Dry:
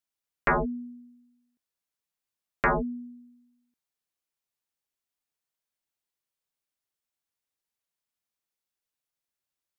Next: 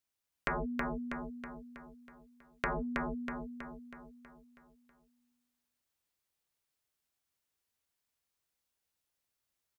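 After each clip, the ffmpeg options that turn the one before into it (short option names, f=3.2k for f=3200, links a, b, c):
-filter_complex "[0:a]equalizer=f=69:t=o:w=1.3:g=6.5,acompressor=threshold=-35dB:ratio=5,asplit=2[a][b];[b]aecho=0:1:322|644|966|1288|1610|1932|2254:0.708|0.368|0.191|0.0995|0.0518|0.0269|0.014[c];[a][c]amix=inputs=2:normalize=0,volume=1dB"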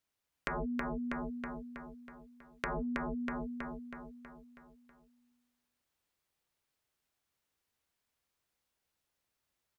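-af "acompressor=threshold=-38dB:ratio=6,highshelf=f=4.2k:g=-6.5,volume=4.5dB"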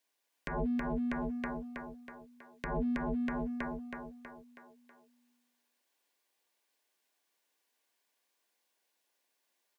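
-filter_complex "[0:a]acrossover=split=240[a][b];[a]aeval=exprs='sgn(val(0))*max(abs(val(0))-0.00119,0)':c=same[c];[b]alimiter=level_in=3.5dB:limit=-24dB:level=0:latency=1:release=184,volume=-3.5dB[d];[c][d]amix=inputs=2:normalize=0,asuperstop=centerf=1300:order=20:qfactor=7.8,volume=5dB"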